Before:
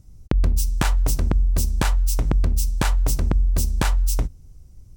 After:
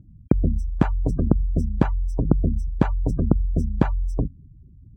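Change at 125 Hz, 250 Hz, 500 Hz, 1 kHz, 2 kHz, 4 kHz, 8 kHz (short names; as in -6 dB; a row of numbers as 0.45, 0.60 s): +0.5 dB, +7.5 dB, +4.0 dB, -2.5 dB, -8.0 dB, under -15 dB, under -25 dB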